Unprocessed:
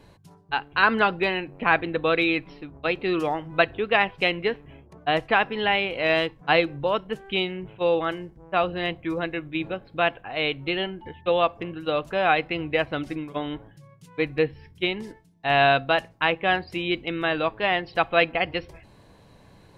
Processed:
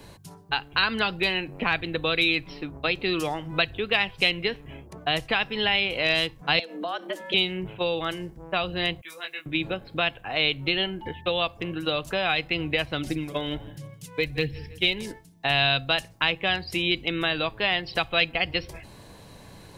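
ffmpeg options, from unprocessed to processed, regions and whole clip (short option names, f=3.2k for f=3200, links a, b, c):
-filter_complex "[0:a]asettb=1/sr,asplit=3[a][b][c];[a]atrim=end=6.594[d];[b]atrim=start=6.59:end=7.34,asetpts=PTS-STARTPTS,afade=t=in:d=0.004:c=qsin,afade=t=out:st=0.746:d=0.004:c=qsin,equalizer=f=1.5k:t=o:w=0.31:g=4,acompressor=threshold=-31dB:ratio=3:attack=3.2:release=140:knee=1:detection=peak,afreqshift=160[e];[c]atrim=start=7.336[f];[d][e]acrossfade=d=0.004:c1=hsin:c2=qsin[g];[g][f]acrossfade=d=0.004:c1=qsin:c2=hsin,asettb=1/sr,asplit=3[h][i][j];[h]atrim=end=9.014[k];[i]atrim=start=9.01:end=9.46,asetpts=PTS-STARTPTS,afade=t=in:d=0.004:c=qsin,afade=t=out:st=0.446:d=0.004:c=qsin,aderivative,asplit=2[l][m];[m]adelay=20,volume=-3dB[n];[l][n]amix=inputs=2:normalize=0,atrim=end_sample=19845[o];[j]atrim=start=9.456[p];[k][o]acrossfade=d=0.004:c1=hsin:c2=qsin[q];[q][p]acrossfade=d=0.004:c1=qsin:c2=hsin,asettb=1/sr,asplit=3[r][s][t];[r]atrim=end=13.044[u];[s]atrim=start=13.04:end=15.06,asetpts=PTS-STARTPTS,afade=t=in:d=0.004:c=qsin,afade=t=out:st=2.016:d=0.004:c=qsin,aphaser=in_gain=1:out_gain=1:delay=2:decay=0.37:speed=1.3:type=sinusoidal,equalizer=f=1.1k:t=o:w=0.58:g=-5.5,aecho=1:1:163|326|489:0.0631|0.0259|0.0106,atrim=end_sample=89082[v];[t]atrim=start=15.056[w];[u][v]acrossfade=d=0.004:c1=hsin:c2=qsin[x];[x][w]acrossfade=d=0.004:c1=qsin:c2=hsin,highshelf=f=4.5k:g=10,acrossover=split=140|3000[y][z][aa];[z]acompressor=threshold=-32dB:ratio=4[ab];[y][ab][aa]amix=inputs=3:normalize=0,volume=5dB"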